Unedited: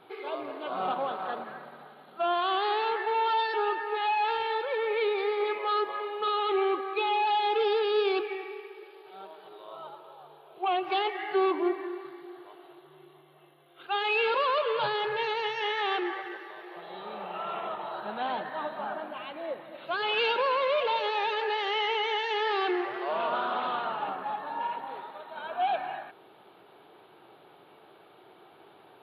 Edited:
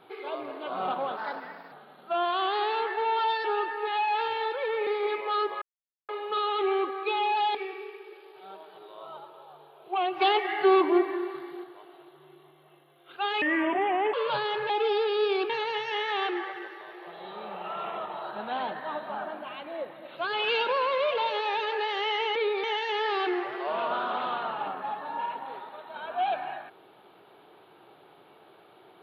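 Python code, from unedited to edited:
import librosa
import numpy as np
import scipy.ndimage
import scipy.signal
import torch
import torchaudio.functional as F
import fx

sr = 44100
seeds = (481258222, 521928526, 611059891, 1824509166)

y = fx.edit(x, sr, fx.speed_span(start_s=1.17, length_s=0.64, speed=1.17),
    fx.move(start_s=4.96, length_s=0.28, to_s=22.05),
    fx.insert_silence(at_s=5.99, length_s=0.47),
    fx.move(start_s=7.45, length_s=0.8, to_s=15.19),
    fx.clip_gain(start_s=10.91, length_s=1.43, db=5.0),
    fx.speed_span(start_s=14.12, length_s=0.51, speed=0.71), tone=tone)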